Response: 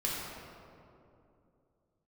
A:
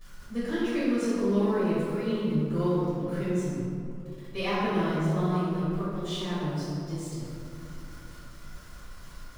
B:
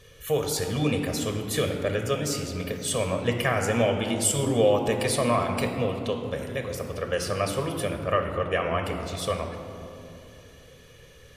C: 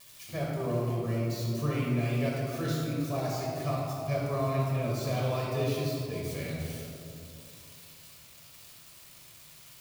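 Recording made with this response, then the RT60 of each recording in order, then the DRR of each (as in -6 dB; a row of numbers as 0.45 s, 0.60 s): C; 2.7 s, 2.7 s, 2.7 s; -12.0 dB, 4.0 dB, -5.5 dB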